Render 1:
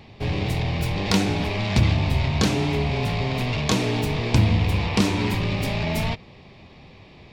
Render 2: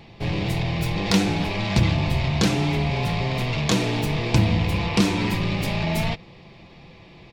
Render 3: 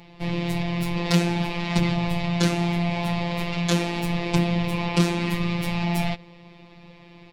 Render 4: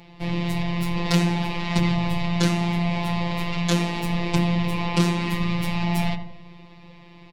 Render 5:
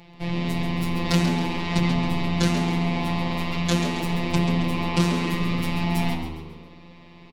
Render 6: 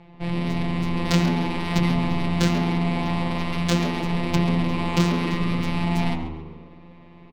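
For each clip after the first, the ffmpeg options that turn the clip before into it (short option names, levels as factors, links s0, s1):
-af "aecho=1:1:5.9:0.38"
-af "afftfilt=real='hypot(re,im)*cos(PI*b)':imag='0':win_size=1024:overlap=0.75,volume=1.19"
-filter_complex "[0:a]asplit=2[s0][s1];[s1]adelay=86,lowpass=f=1200:p=1,volume=0.447,asplit=2[s2][s3];[s3]adelay=86,lowpass=f=1200:p=1,volume=0.54,asplit=2[s4][s5];[s5]adelay=86,lowpass=f=1200:p=1,volume=0.54,asplit=2[s6][s7];[s7]adelay=86,lowpass=f=1200:p=1,volume=0.54,asplit=2[s8][s9];[s9]adelay=86,lowpass=f=1200:p=1,volume=0.54,asplit=2[s10][s11];[s11]adelay=86,lowpass=f=1200:p=1,volume=0.54,asplit=2[s12][s13];[s13]adelay=86,lowpass=f=1200:p=1,volume=0.54[s14];[s0][s2][s4][s6][s8][s10][s12][s14]amix=inputs=8:normalize=0"
-filter_complex "[0:a]asplit=6[s0][s1][s2][s3][s4][s5];[s1]adelay=136,afreqshift=76,volume=0.355[s6];[s2]adelay=272,afreqshift=152,volume=0.15[s7];[s3]adelay=408,afreqshift=228,volume=0.0624[s8];[s4]adelay=544,afreqshift=304,volume=0.0263[s9];[s5]adelay=680,afreqshift=380,volume=0.0111[s10];[s0][s6][s7][s8][s9][s10]amix=inputs=6:normalize=0,volume=0.891"
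-af "adynamicsmooth=sensitivity=2.5:basefreq=2100,volume=1.12"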